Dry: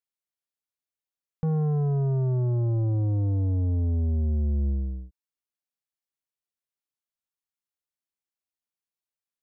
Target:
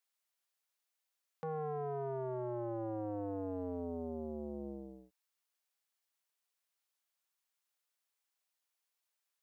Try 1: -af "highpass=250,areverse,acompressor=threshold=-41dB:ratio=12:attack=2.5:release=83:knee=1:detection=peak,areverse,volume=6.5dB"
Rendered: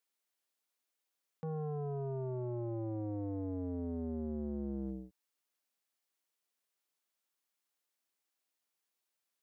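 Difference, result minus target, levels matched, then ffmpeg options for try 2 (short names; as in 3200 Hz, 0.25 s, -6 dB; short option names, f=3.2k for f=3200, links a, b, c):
500 Hz band -3.0 dB
-af "highpass=570,areverse,acompressor=threshold=-41dB:ratio=12:attack=2.5:release=83:knee=1:detection=peak,areverse,volume=6.5dB"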